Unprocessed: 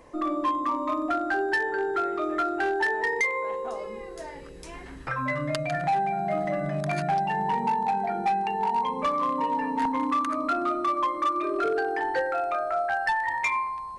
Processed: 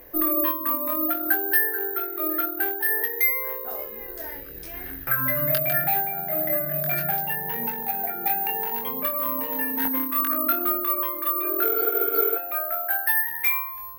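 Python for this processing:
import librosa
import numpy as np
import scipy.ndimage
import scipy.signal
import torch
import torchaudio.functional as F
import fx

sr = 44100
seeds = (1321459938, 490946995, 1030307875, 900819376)

y = fx.graphic_eq_31(x, sr, hz=(200, 1000, 1600, 8000), db=(-10, -11, 6, -7))
y = fx.rider(y, sr, range_db=4, speed_s=2.0)
y = fx.high_shelf(y, sr, hz=5000.0, db=6.0, at=(9.42, 9.89))
y = fx.spec_repair(y, sr, seeds[0], start_s=11.73, length_s=0.6, low_hz=260.0, high_hz=3800.0, source='before')
y = fx.doubler(y, sr, ms=22.0, db=-5.0)
y = (np.kron(scipy.signal.resample_poly(y, 1, 3), np.eye(3)[0]) * 3)[:len(y)]
y = fx.am_noise(y, sr, seeds[1], hz=5.7, depth_pct=60)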